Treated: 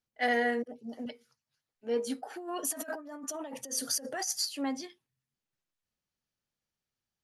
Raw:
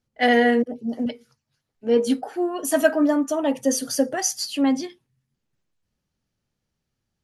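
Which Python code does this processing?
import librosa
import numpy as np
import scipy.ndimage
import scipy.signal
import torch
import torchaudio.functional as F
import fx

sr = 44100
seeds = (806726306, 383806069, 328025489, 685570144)

y = fx.dynamic_eq(x, sr, hz=3000.0, q=2.3, threshold_db=-42.0, ratio=4.0, max_db=-6)
y = fx.over_compress(y, sr, threshold_db=-28.0, ratio=-1.0, at=(2.3, 4.49))
y = fx.low_shelf(y, sr, hz=460.0, db=-10.5)
y = F.gain(torch.from_numpy(y), -6.5).numpy()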